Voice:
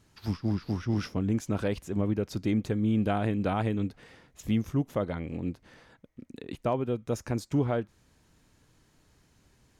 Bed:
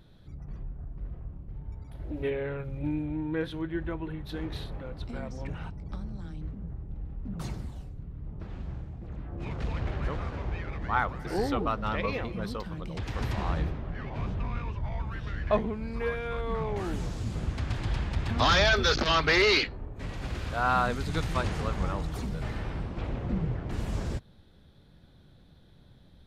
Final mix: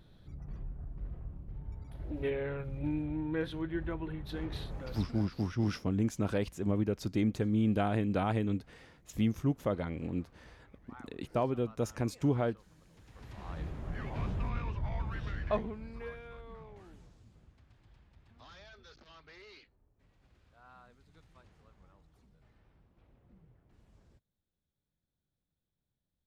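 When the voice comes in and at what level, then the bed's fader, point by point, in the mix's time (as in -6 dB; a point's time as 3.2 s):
4.70 s, -2.5 dB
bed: 5.02 s -3 dB
5.46 s -26 dB
12.98 s -26 dB
13.92 s -2.5 dB
15.25 s -2.5 dB
17.68 s -32 dB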